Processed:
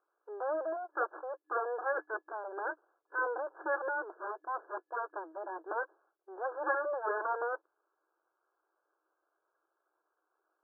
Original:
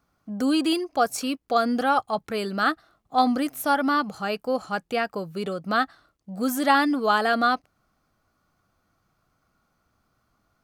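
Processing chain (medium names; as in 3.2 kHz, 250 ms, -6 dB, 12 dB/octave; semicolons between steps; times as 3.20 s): full-wave rectifier; FFT band-pass 310–1700 Hz; trim -4.5 dB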